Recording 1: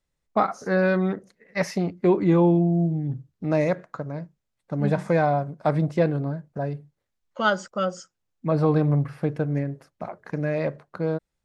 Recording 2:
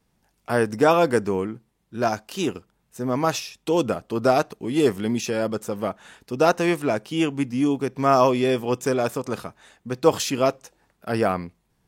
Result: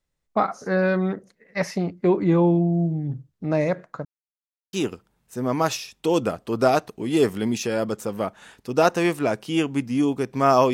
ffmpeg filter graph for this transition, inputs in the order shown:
ffmpeg -i cue0.wav -i cue1.wav -filter_complex "[0:a]apad=whole_dur=10.73,atrim=end=10.73,asplit=2[link_01][link_02];[link_01]atrim=end=4.05,asetpts=PTS-STARTPTS,afade=type=out:start_time=4.046:duration=0.004:curve=hsin[link_03];[link_02]atrim=start=4.05:end=4.73,asetpts=PTS-STARTPTS,volume=0[link_04];[1:a]atrim=start=2.36:end=8.36,asetpts=PTS-STARTPTS,afade=type=in:duration=0.004:curve=hsin[link_05];[link_03][link_04][link_05]concat=n=3:v=0:a=1" out.wav

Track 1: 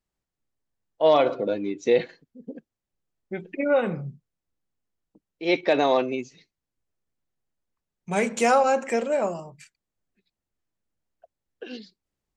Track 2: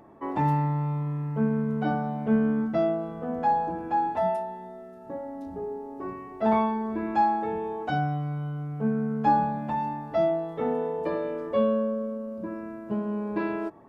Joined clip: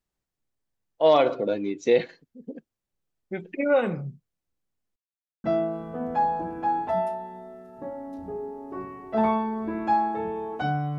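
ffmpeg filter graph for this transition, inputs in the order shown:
ffmpeg -i cue0.wav -i cue1.wav -filter_complex "[0:a]apad=whole_dur=10.98,atrim=end=10.98,asplit=2[link_01][link_02];[link_01]atrim=end=4.96,asetpts=PTS-STARTPTS,afade=type=out:start_time=4.956:duration=0.004:curve=hsin[link_03];[link_02]atrim=start=4.96:end=5.44,asetpts=PTS-STARTPTS,volume=0[link_04];[1:a]atrim=start=2.72:end=8.26,asetpts=PTS-STARTPTS,afade=type=in:duration=0.004:curve=hsin[link_05];[link_03][link_04][link_05]concat=n=3:v=0:a=1" out.wav

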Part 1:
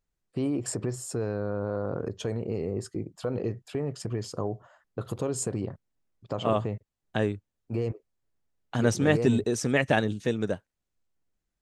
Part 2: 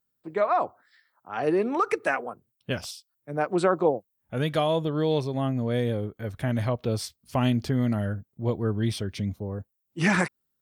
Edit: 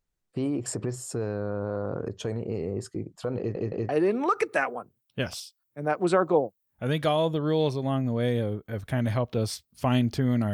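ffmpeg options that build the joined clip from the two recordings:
ffmpeg -i cue0.wav -i cue1.wav -filter_complex "[0:a]apad=whole_dur=10.53,atrim=end=10.53,asplit=3[link_01][link_02][link_03];[link_01]atrim=end=3.552[link_04];[link_02]atrim=start=3.378:end=3.552[link_05];[link_03]atrim=start=3.378:end=3.552[link_06];[1:a]atrim=start=1.398:end=8.04[link_07];[link_04][link_05]acrossfade=duration=0.004:curve1=hsin:curve2=hsin[link_08];[link_08][link_06]acrossfade=duration=0.004:curve1=hsin:curve2=hsin[link_09];[link_09][link_07]acrossfade=duration=0.004:curve1=hsin:curve2=hsin" out.wav

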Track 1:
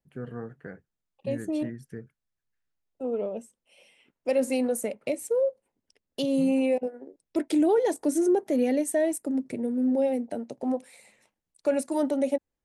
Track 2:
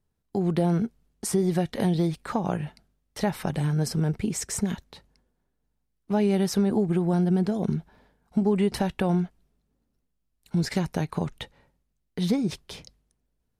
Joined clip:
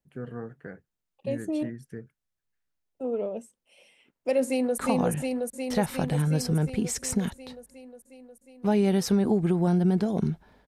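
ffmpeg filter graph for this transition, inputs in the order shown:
ffmpeg -i cue0.wav -i cue1.wav -filter_complex "[0:a]apad=whole_dur=10.67,atrim=end=10.67,atrim=end=4.782[link_01];[1:a]atrim=start=2.238:end=8.13[link_02];[link_01][link_02]acrossfade=duration=0.004:curve1=hsin:curve2=hsin,asplit=2[link_03][link_04];[link_04]afade=type=in:start_time=4.45:duration=0.01,afade=type=out:start_time=4.78:duration=0.01,aecho=0:1:360|720|1080|1440|1800|2160|2520|2880|3240|3600|3960|4320:0.891251|0.668438|0.501329|0.375996|0.281997|0.211498|0.158624|0.118968|0.0892257|0.0669193|0.0501895|0.0376421[link_05];[link_03][link_05]amix=inputs=2:normalize=0" out.wav

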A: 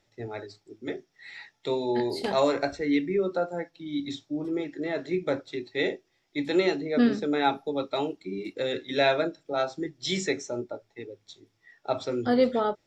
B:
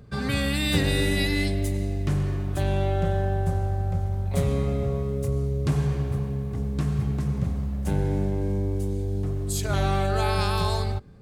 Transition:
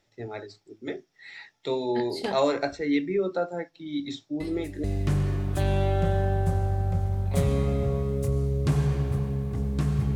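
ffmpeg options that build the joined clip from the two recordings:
ffmpeg -i cue0.wav -i cue1.wav -filter_complex "[1:a]asplit=2[link_01][link_02];[0:a]apad=whole_dur=10.15,atrim=end=10.15,atrim=end=4.842[link_03];[link_02]atrim=start=1.838:end=7.15[link_04];[link_01]atrim=start=1.4:end=1.84,asetpts=PTS-STARTPTS,volume=-15dB,afade=type=in:duration=0.004:curve=hsin,afade=type=out:start_time=0.436:duration=0.004:curve=hsin,adelay=4400[link_05];[link_03][link_04]acrossfade=duration=0.004:curve1=hsin:curve2=hsin[link_06];[link_06][link_05]amix=inputs=2:normalize=0" out.wav

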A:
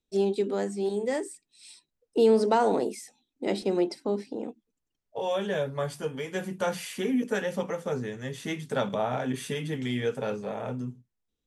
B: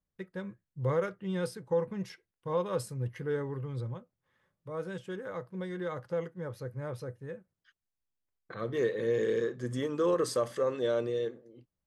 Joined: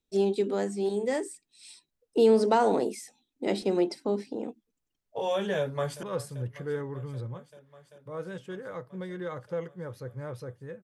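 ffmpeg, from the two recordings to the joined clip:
ffmpeg -i cue0.wav -i cue1.wav -filter_complex "[0:a]apad=whole_dur=10.83,atrim=end=10.83,atrim=end=6.032[link_01];[1:a]atrim=start=2.628:end=7.43[link_02];[link_01][link_02]acrossfade=duration=0.004:curve1=hsin:curve2=hsin,asplit=2[link_03][link_04];[link_04]afade=type=in:start_time=5.57:duration=0.01,afade=type=out:start_time=6.03:duration=0.01,aecho=0:1:390|780|1170|1560|1950|2340|2730|3120|3510|3900|4290|4680:0.125893|0.107009|0.0909574|0.0773138|0.0657167|0.0558592|0.0474803|0.0403583|0.0343045|0.0291588|0.024785|0.0210673[link_05];[link_03][link_05]amix=inputs=2:normalize=0" out.wav

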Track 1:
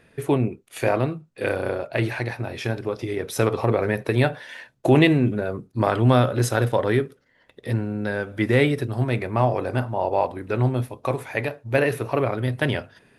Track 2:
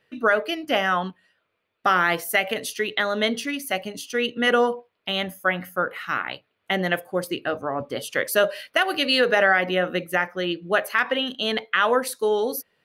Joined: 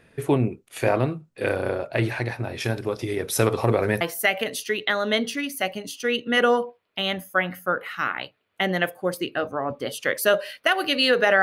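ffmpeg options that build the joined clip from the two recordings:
ffmpeg -i cue0.wav -i cue1.wav -filter_complex "[0:a]asettb=1/sr,asplit=3[link_01][link_02][link_03];[link_01]atrim=end=2.604[link_04];[link_02]atrim=start=2.6:end=4.01,asetpts=PTS-STARTPTS,afade=type=in:duration=0.004:curve=qsin,afade=type=out:start_time=1.406:duration=0.004:curve=qsin,highshelf=frequency=4900:gain=8.5[link_05];[link_03]atrim=start=4.006[link_06];[link_04][link_05]acrossfade=duration=0.004:curve1=hsin:curve2=qsin[link_07];[link_07][link_06]acrossfade=duration=0.004:curve1=qsin:curve2=hsin,apad=whole_dur=11.42,atrim=end=11.42,atrim=end=4.012[link_08];[1:a]atrim=start=2.108:end=9.52[link_09];[link_08][link_09]acrossfade=duration=0.004:curve1=hsin:curve2=hsin" out.wav

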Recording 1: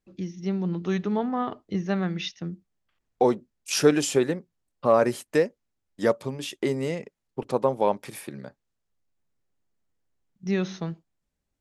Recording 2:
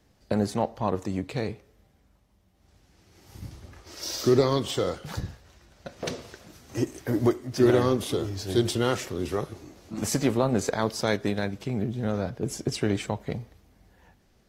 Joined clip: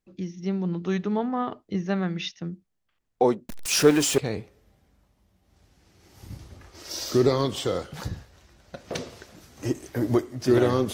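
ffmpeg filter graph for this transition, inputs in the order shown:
ffmpeg -i cue0.wav -i cue1.wav -filter_complex "[0:a]asettb=1/sr,asplit=3[link_01][link_02][link_03];[link_01]atrim=end=3.494[link_04];[link_02]atrim=start=3.49:end=4.18,asetpts=PTS-STARTPTS,afade=type=in:duration=0.004:curve=qsin,afade=type=out:start_time=0.686:duration=0.004:curve=qsin,aeval=exprs='val(0)+0.5*0.0501*sgn(val(0))':channel_layout=same[link_05];[link_03]atrim=start=4.176[link_06];[link_04][link_05]acrossfade=duration=0.004:curve1=hsin:curve2=qsin[link_07];[link_07][link_06]acrossfade=duration=0.004:curve1=qsin:curve2=hsin,apad=whole_dur=10.93,atrim=end=10.93,atrim=end=4.182[link_08];[1:a]atrim=start=1.298:end=8.05[link_09];[link_08][link_09]acrossfade=duration=0.004:curve1=hsin:curve2=hsin" out.wav

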